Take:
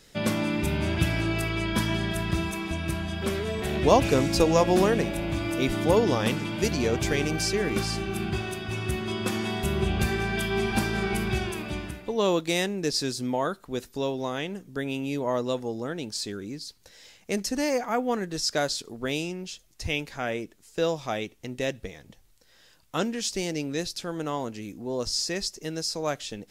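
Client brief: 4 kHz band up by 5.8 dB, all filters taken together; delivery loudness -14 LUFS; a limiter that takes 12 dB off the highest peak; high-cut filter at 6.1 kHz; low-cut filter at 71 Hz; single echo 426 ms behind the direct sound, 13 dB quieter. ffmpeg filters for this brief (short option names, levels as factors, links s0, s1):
-af "highpass=71,lowpass=6100,equalizer=f=4000:t=o:g=8.5,alimiter=limit=0.15:level=0:latency=1,aecho=1:1:426:0.224,volume=5.01"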